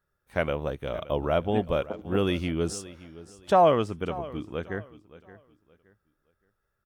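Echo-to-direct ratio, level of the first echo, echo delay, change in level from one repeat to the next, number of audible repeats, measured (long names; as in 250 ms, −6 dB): −17.0 dB, −17.5 dB, 571 ms, −11.0 dB, 2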